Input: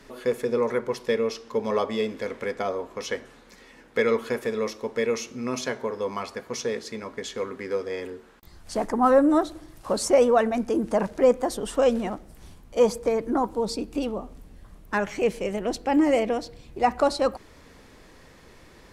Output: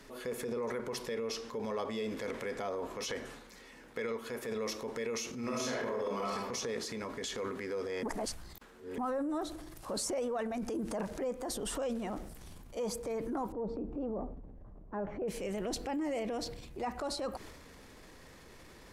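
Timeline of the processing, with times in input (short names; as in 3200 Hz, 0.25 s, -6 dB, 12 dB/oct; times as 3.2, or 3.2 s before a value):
3.98–4.49 upward expander, over -30 dBFS
5.39–6.35 reverb throw, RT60 0.88 s, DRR -6.5 dB
8.03–8.98 reverse
13.52–15.28 Chebyshev low-pass 710 Hz
whole clip: high shelf 7500 Hz +5 dB; compressor 10:1, threshold -28 dBFS; transient shaper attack -5 dB, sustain +7 dB; gain -4 dB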